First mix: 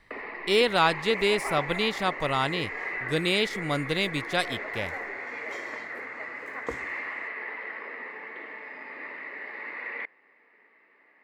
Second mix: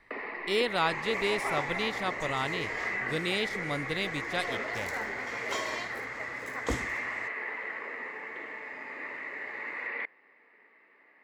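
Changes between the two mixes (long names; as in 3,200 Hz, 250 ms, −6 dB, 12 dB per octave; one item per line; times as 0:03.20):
speech −6.0 dB
second sound +12.0 dB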